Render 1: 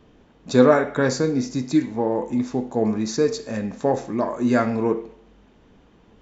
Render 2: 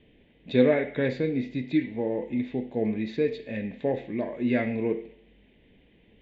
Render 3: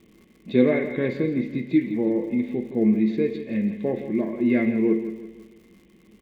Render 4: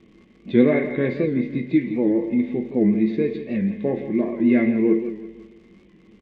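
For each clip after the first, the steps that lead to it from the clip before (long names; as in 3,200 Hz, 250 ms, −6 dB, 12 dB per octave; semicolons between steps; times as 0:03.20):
drawn EQ curve 560 Hz 0 dB, 1,300 Hz −17 dB, 2,000 Hz +9 dB, 3,600 Hz +4 dB, 5,600 Hz −27 dB; level −5.5 dB
surface crackle 130 per second −44 dBFS; hollow resonant body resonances 210/340/1,100/2,100 Hz, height 13 dB, ringing for 55 ms; on a send: repeating echo 165 ms, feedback 45%, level −11.5 dB; on the sum: level −3 dB
high-frequency loss of the air 120 metres; double-tracking delay 21 ms −11.5 dB; wow of a warped record 78 rpm, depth 100 cents; level +2.5 dB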